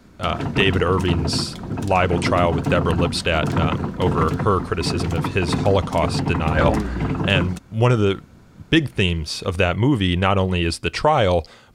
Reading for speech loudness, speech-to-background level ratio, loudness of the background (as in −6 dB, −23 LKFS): −21.0 LKFS, 4.0 dB, −25.0 LKFS